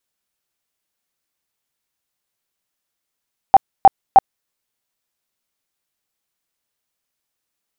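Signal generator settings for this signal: tone bursts 780 Hz, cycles 21, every 0.31 s, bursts 3, -2 dBFS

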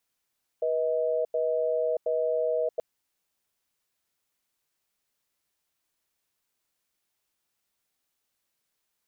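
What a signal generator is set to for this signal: cadence 485 Hz, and 633 Hz, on 0.63 s, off 0.09 s, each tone -26.5 dBFS 2.18 s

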